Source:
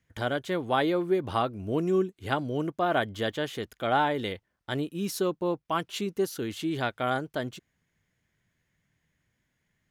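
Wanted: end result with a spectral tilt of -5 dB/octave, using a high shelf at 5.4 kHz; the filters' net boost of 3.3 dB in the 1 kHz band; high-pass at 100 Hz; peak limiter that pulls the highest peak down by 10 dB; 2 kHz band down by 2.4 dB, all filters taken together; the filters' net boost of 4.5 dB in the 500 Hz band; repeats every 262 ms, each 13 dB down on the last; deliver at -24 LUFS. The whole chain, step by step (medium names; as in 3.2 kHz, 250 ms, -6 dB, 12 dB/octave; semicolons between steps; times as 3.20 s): high-pass 100 Hz; peaking EQ 500 Hz +5.5 dB; peaking EQ 1 kHz +3.5 dB; peaking EQ 2 kHz -6.5 dB; treble shelf 5.4 kHz +3.5 dB; peak limiter -19 dBFS; feedback delay 262 ms, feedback 22%, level -13 dB; trim +6 dB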